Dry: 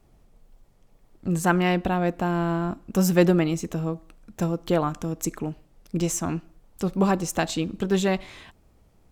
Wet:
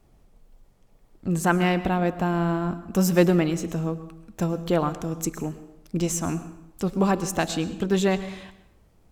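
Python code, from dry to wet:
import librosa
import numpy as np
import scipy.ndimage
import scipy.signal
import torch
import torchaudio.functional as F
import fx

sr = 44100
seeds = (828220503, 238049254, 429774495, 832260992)

y = fx.rev_plate(x, sr, seeds[0], rt60_s=0.81, hf_ratio=0.75, predelay_ms=95, drr_db=13.5)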